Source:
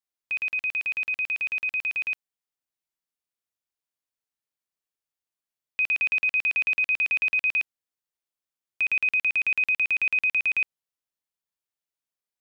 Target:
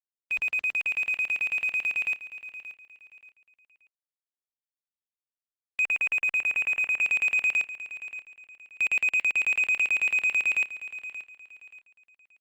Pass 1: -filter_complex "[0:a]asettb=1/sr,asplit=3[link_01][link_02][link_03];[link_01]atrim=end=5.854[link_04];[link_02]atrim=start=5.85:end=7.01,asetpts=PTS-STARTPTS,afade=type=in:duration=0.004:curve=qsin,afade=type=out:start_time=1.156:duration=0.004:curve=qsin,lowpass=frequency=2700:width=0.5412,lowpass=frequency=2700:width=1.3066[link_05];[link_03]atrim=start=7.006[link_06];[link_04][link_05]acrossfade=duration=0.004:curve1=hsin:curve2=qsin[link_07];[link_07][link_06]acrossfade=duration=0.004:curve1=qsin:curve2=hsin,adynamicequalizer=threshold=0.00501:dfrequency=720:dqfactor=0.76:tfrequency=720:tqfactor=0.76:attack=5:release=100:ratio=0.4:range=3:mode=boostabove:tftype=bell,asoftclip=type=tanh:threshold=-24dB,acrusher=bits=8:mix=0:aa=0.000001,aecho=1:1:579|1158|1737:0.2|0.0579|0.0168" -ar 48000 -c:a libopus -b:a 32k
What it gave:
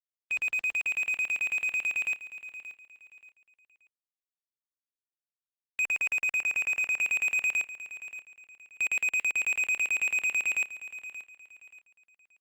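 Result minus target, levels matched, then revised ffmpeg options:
soft clipping: distortion +9 dB
-filter_complex "[0:a]asettb=1/sr,asplit=3[link_01][link_02][link_03];[link_01]atrim=end=5.854[link_04];[link_02]atrim=start=5.85:end=7.01,asetpts=PTS-STARTPTS,afade=type=in:duration=0.004:curve=qsin,afade=type=out:start_time=1.156:duration=0.004:curve=qsin,lowpass=frequency=2700:width=0.5412,lowpass=frequency=2700:width=1.3066[link_05];[link_03]atrim=start=7.006[link_06];[link_04][link_05]acrossfade=duration=0.004:curve1=hsin:curve2=qsin[link_07];[link_07][link_06]acrossfade=duration=0.004:curve1=qsin:curve2=hsin,adynamicequalizer=threshold=0.00501:dfrequency=720:dqfactor=0.76:tfrequency=720:tqfactor=0.76:attack=5:release=100:ratio=0.4:range=3:mode=boostabove:tftype=bell,asoftclip=type=tanh:threshold=-17.5dB,acrusher=bits=8:mix=0:aa=0.000001,aecho=1:1:579|1158|1737:0.2|0.0579|0.0168" -ar 48000 -c:a libopus -b:a 32k

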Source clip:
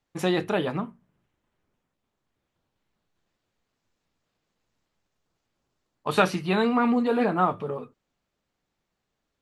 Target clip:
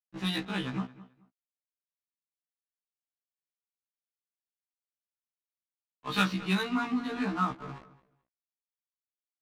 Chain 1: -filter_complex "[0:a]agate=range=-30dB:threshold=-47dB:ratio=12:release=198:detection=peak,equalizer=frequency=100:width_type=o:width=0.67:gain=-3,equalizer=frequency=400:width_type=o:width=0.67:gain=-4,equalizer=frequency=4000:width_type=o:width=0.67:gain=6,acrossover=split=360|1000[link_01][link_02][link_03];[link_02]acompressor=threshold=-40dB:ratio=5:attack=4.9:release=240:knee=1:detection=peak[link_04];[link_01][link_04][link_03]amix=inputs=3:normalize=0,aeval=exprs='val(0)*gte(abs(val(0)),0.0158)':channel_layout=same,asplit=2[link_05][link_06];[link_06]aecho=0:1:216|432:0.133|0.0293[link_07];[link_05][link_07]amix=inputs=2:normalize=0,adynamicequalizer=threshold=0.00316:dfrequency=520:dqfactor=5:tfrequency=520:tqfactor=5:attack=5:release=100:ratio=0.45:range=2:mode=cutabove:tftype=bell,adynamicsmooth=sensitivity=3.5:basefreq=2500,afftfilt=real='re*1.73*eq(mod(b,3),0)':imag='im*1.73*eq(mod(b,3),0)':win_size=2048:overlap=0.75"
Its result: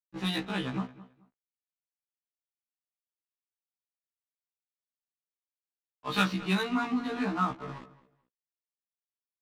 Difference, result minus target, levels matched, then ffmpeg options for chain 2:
downward compressor: peak gain reduction −9.5 dB
-filter_complex "[0:a]agate=range=-30dB:threshold=-47dB:ratio=12:release=198:detection=peak,equalizer=frequency=100:width_type=o:width=0.67:gain=-3,equalizer=frequency=400:width_type=o:width=0.67:gain=-4,equalizer=frequency=4000:width_type=o:width=0.67:gain=6,acrossover=split=360|1000[link_01][link_02][link_03];[link_02]acompressor=threshold=-52dB:ratio=5:attack=4.9:release=240:knee=1:detection=peak[link_04];[link_01][link_04][link_03]amix=inputs=3:normalize=0,aeval=exprs='val(0)*gte(abs(val(0)),0.0158)':channel_layout=same,asplit=2[link_05][link_06];[link_06]aecho=0:1:216|432:0.133|0.0293[link_07];[link_05][link_07]amix=inputs=2:normalize=0,adynamicequalizer=threshold=0.00316:dfrequency=520:dqfactor=5:tfrequency=520:tqfactor=5:attack=5:release=100:ratio=0.45:range=2:mode=cutabove:tftype=bell,adynamicsmooth=sensitivity=3.5:basefreq=2500,afftfilt=real='re*1.73*eq(mod(b,3),0)':imag='im*1.73*eq(mod(b,3),0)':win_size=2048:overlap=0.75"

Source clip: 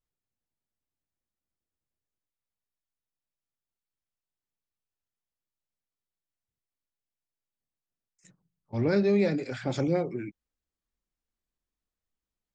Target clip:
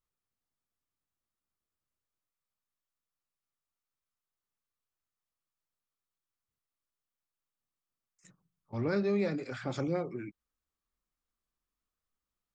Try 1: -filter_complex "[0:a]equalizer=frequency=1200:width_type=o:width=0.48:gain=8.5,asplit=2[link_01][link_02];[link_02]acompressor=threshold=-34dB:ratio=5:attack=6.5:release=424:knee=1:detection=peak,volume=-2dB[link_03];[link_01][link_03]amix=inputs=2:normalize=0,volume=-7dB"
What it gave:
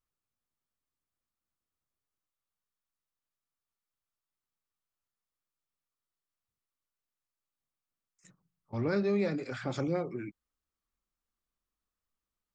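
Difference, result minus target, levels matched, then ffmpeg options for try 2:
downward compressor: peak gain reduction −5.5 dB
-filter_complex "[0:a]equalizer=frequency=1200:width_type=o:width=0.48:gain=8.5,asplit=2[link_01][link_02];[link_02]acompressor=threshold=-41dB:ratio=5:attack=6.5:release=424:knee=1:detection=peak,volume=-2dB[link_03];[link_01][link_03]amix=inputs=2:normalize=0,volume=-7dB"

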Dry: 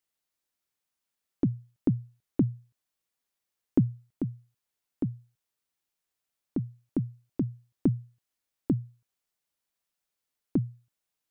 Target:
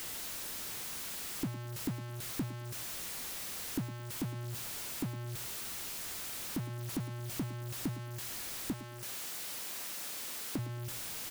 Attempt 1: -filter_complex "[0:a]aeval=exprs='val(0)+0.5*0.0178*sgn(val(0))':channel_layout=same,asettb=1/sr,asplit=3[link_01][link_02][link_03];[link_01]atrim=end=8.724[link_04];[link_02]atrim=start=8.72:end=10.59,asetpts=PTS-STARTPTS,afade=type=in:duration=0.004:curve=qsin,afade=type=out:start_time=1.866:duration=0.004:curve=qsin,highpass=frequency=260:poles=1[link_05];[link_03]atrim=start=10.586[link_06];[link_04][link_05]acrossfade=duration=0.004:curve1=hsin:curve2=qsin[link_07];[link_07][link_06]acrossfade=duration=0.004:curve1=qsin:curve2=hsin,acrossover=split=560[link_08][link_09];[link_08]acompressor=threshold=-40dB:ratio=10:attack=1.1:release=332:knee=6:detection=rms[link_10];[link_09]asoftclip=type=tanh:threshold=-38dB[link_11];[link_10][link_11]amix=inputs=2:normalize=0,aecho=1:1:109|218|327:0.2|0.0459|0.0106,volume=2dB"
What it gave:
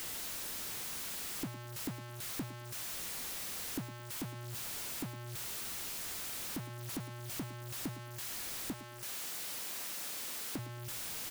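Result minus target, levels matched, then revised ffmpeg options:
downward compressor: peak gain reduction +6 dB
-filter_complex "[0:a]aeval=exprs='val(0)+0.5*0.0178*sgn(val(0))':channel_layout=same,asettb=1/sr,asplit=3[link_01][link_02][link_03];[link_01]atrim=end=8.724[link_04];[link_02]atrim=start=8.72:end=10.59,asetpts=PTS-STARTPTS,afade=type=in:duration=0.004:curve=qsin,afade=type=out:start_time=1.866:duration=0.004:curve=qsin,highpass=frequency=260:poles=1[link_05];[link_03]atrim=start=10.586[link_06];[link_04][link_05]acrossfade=duration=0.004:curve1=hsin:curve2=qsin[link_07];[link_07][link_06]acrossfade=duration=0.004:curve1=qsin:curve2=hsin,acrossover=split=560[link_08][link_09];[link_08]acompressor=threshold=-33.5dB:ratio=10:attack=1.1:release=332:knee=6:detection=rms[link_10];[link_09]asoftclip=type=tanh:threshold=-38dB[link_11];[link_10][link_11]amix=inputs=2:normalize=0,aecho=1:1:109|218|327:0.2|0.0459|0.0106,volume=2dB"

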